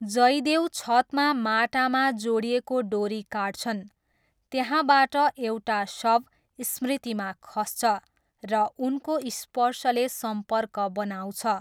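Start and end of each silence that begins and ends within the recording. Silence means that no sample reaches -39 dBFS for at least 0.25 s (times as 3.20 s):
3.85–4.52 s
6.21–6.59 s
7.99–8.43 s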